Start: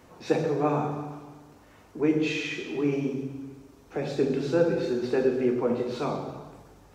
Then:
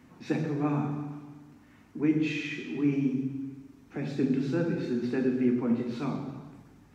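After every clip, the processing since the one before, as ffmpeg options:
ffmpeg -i in.wav -af "equalizer=frequency=125:width_type=o:width=1:gain=6,equalizer=frequency=250:width_type=o:width=1:gain=12,equalizer=frequency=500:width_type=o:width=1:gain=-7,equalizer=frequency=2000:width_type=o:width=1:gain=6,volume=-7.5dB" out.wav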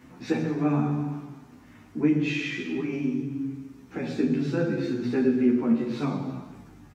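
ffmpeg -i in.wav -filter_complex "[0:a]asplit=2[link_01][link_02];[link_02]acompressor=threshold=-33dB:ratio=6,volume=-3dB[link_03];[link_01][link_03]amix=inputs=2:normalize=0,asplit=2[link_04][link_05];[link_05]adelay=11.8,afreqshift=-0.82[link_06];[link_04][link_06]amix=inputs=2:normalize=1,volume=4dB" out.wav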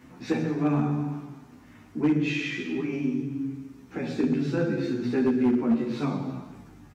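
ffmpeg -i in.wav -af "volume=17dB,asoftclip=hard,volume=-17dB" out.wav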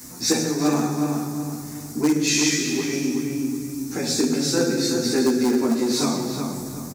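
ffmpeg -i in.wav -filter_complex "[0:a]asplit=2[link_01][link_02];[link_02]adelay=369,lowpass=frequency=2700:poles=1,volume=-5.5dB,asplit=2[link_03][link_04];[link_04]adelay=369,lowpass=frequency=2700:poles=1,volume=0.36,asplit=2[link_05][link_06];[link_06]adelay=369,lowpass=frequency=2700:poles=1,volume=0.36,asplit=2[link_07][link_08];[link_08]adelay=369,lowpass=frequency=2700:poles=1,volume=0.36[link_09];[link_01][link_03][link_05][link_07][link_09]amix=inputs=5:normalize=0,acrossover=split=260|3200[link_10][link_11][link_12];[link_10]acompressor=threshold=-36dB:ratio=6[link_13];[link_13][link_11][link_12]amix=inputs=3:normalize=0,aexciter=amount=15.6:drive=4.2:freq=4500,volume=5.5dB" out.wav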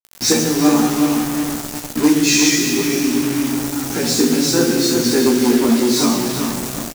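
ffmpeg -i in.wav -filter_complex "[0:a]acrusher=bits=4:mix=0:aa=0.000001,asplit=2[link_01][link_02];[link_02]aecho=0:1:17|38:0.398|0.188[link_03];[link_01][link_03]amix=inputs=2:normalize=0,volume=5dB" out.wav

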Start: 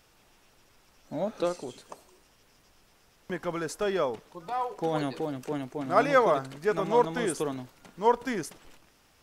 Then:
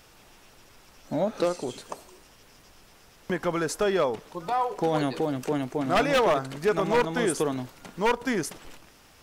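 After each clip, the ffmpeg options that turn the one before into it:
ffmpeg -i in.wav -filter_complex "[0:a]asplit=2[link_01][link_02];[link_02]acompressor=threshold=-33dB:ratio=6,volume=3dB[link_03];[link_01][link_03]amix=inputs=2:normalize=0,aeval=exprs='0.178*(abs(mod(val(0)/0.178+3,4)-2)-1)':channel_layout=same" out.wav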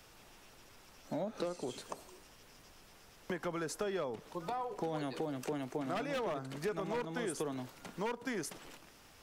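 ffmpeg -i in.wav -filter_complex "[0:a]acrossover=split=110|350[link_01][link_02][link_03];[link_01]acompressor=threshold=-56dB:ratio=4[link_04];[link_02]acompressor=threshold=-38dB:ratio=4[link_05];[link_03]acompressor=threshold=-34dB:ratio=4[link_06];[link_04][link_05][link_06]amix=inputs=3:normalize=0,volume=-4.5dB" out.wav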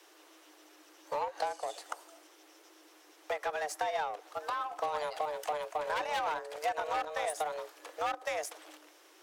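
ffmpeg -i in.wav -af "afreqshift=300,aeval=exprs='0.0596*(cos(1*acos(clip(val(0)/0.0596,-1,1)))-cos(1*PI/2))+0.00335*(cos(7*acos(clip(val(0)/0.0596,-1,1)))-cos(7*PI/2))':channel_layout=same,volume=4dB" out.wav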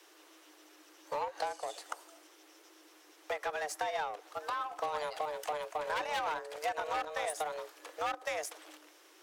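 ffmpeg -i in.wav -af "equalizer=frequency=700:width=1.5:gain=-2.5" out.wav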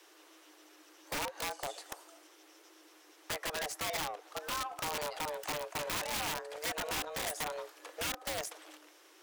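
ffmpeg -i in.wav -af "aeval=exprs='(mod(28.2*val(0)+1,2)-1)/28.2':channel_layout=same" out.wav

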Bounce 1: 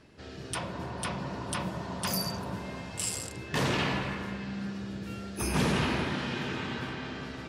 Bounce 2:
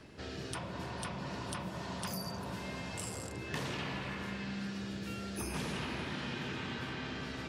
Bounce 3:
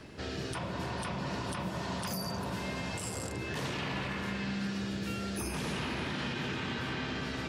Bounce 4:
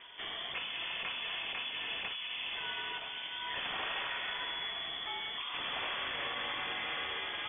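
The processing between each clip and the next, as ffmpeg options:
ffmpeg -i in.wav -filter_complex "[0:a]acrossover=split=200|1800[link_01][link_02][link_03];[link_01]acompressor=threshold=-48dB:ratio=4[link_04];[link_02]acompressor=threshold=-46dB:ratio=4[link_05];[link_03]acompressor=threshold=-48dB:ratio=4[link_06];[link_04][link_05][link_06]amix=inputs=3:normalize=0,volume=3dB" out.wav
ffmpeg -i in.wav -af "alimiter=level_in=7.5dB:limit=-24dB:level=0:latency=1:release=28,volume=-7.5dB,volume=5dB" out.wav
ffmpeg -i in.wav -af "aemphasis=mode=production:type=bsi,lowpass=frequency=3100:width_type=q:width=0.5098,lowpass=frequency=3100:width_type=q:width=0.6013,lowpass=frequency=3100:width_type=q:width=0.9,lowpass=frequency=3100:width_type=q:width=2.563,afreqshift=-3600" out.wav

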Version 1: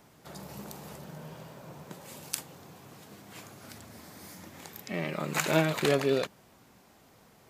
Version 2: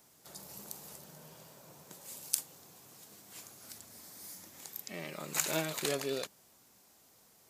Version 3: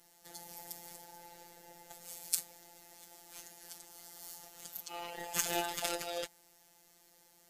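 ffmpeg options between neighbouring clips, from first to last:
ffmpeg -i in.wav -af "bass=frequency=250:gain=-4,treble=frequency=4000:gain=13,volume=-9dB" out.wav
ffmpeg -i in.wav -af "afftfilt=real='real(if(between(b,1,1008),(2*floor((b-1)/48)+1)*48-b,b),0)':imag='imag(if(between(b,1,1008),(2*floor((b-1)/48)+1)*48-b,b),0)*if(between(b,1,1008),-1,1)':win_size=2048:overlap=0.75,afftfilt=real='hypot(re,im)*cos(PI*b)':imag='0':win_size=1024:overlap=0.75,volume=2.5dB" out.wav

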